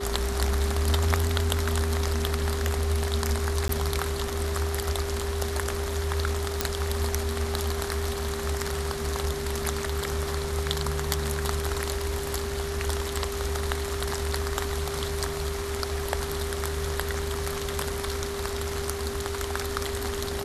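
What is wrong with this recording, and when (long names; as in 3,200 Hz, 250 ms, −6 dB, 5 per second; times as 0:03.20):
whistle 400 Hz −32 dBFS
0:03.68–0:03.69: drop-out 13 ms
0:06.61: click −6 dBFS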